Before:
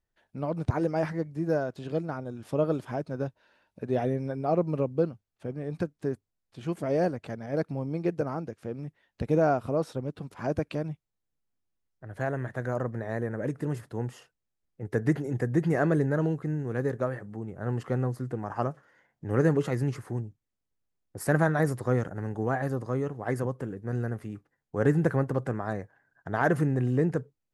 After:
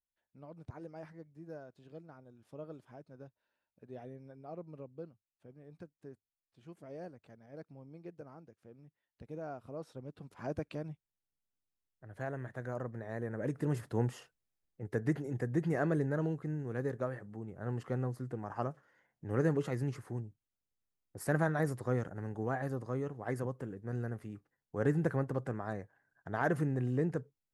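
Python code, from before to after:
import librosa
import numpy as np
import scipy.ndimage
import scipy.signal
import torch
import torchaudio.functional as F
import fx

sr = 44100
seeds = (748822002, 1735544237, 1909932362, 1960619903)

y = fx.gain(x, sr, db=fx.line((9.41, -20.0), (10.39, -9.0), (13.09, -9.0), (13.97, 1.0), (15.01, -7.0)))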